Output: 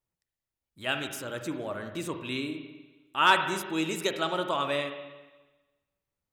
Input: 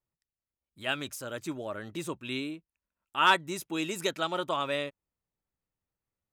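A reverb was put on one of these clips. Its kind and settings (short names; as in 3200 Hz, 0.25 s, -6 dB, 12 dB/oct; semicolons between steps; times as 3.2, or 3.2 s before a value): spring tank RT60 1.2 s, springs 40/50/56 ms, chirp 50 ms, DRR 6 dB; gain +1 dB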